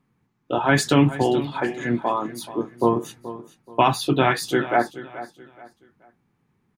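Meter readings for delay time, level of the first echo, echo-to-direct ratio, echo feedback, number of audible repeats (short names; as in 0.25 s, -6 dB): 0.428 s, -15.0 dB, -14.5 dB, 31%, 2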